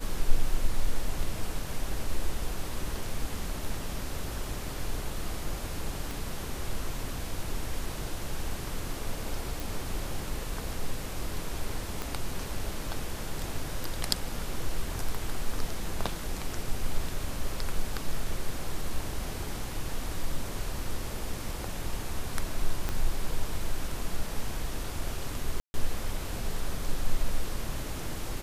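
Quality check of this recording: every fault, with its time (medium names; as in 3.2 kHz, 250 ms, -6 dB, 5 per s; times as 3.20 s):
6.11 s: pop
9.60 s: pop
12.02 s: pop
22.89 s: pop -16 dBFS
25.60–25.74 s: dropout 141 ms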